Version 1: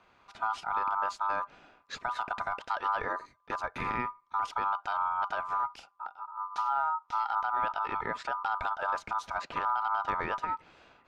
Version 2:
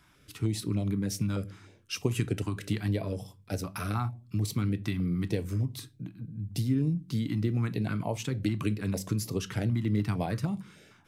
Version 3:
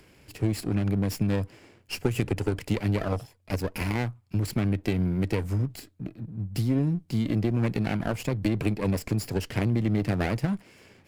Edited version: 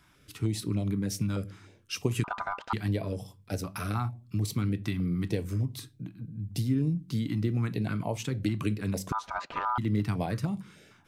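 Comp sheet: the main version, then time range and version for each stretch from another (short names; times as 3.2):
2
2.24–2.73 from 1
9.12–9.78 from 1
not used: 3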